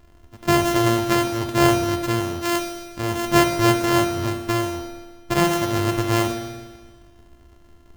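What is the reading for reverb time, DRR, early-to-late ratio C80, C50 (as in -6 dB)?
1.4 s, 3.0 dB, 7.0 dB, 5.5 dB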